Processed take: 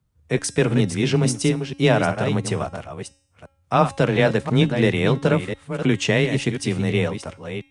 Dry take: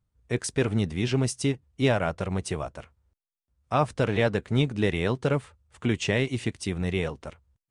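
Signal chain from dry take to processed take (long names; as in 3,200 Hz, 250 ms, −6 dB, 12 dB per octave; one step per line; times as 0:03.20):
delay that plays each chunk backwards 346 ms, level −8.5 dB
hum removal 266.8 Hz, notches 39
frequency shifter +18 Hz
level +6 dB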